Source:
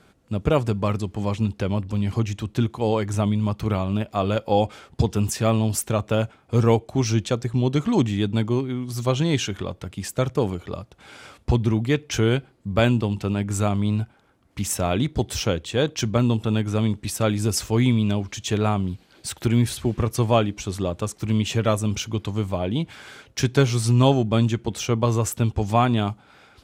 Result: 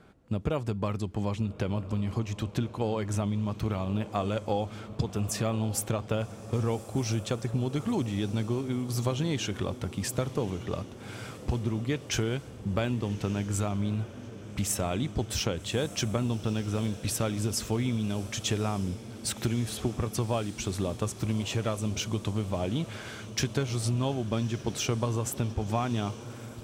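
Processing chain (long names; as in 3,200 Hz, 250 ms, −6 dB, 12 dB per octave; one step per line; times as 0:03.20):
downward compressor, threshold −26 dBFS, peak gain reduction 13.5 dB
on a send: feedback delay with all-pass diffusion 1,219 ms, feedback 68%, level −14.5 dB
on the sum: one half of a high-frequency compander decoder only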